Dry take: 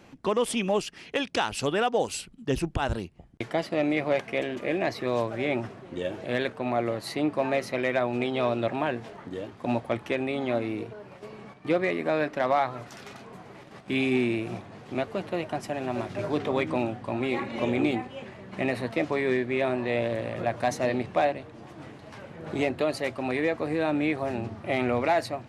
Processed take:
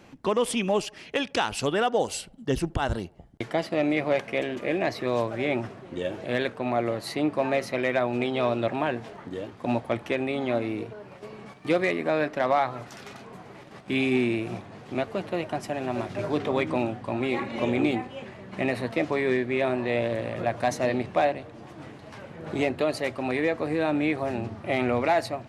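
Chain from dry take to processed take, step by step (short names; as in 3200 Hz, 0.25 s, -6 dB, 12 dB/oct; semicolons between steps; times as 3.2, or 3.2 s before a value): 1.74–3.44 notch 2500 Hz, Q 9; 11.46–11.92 high shelf 4000 Hz +8.5 dB; narrowing echo 75 ms, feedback 53%, band-pass 690 Hz, level -23.5 dB; gain +1 dB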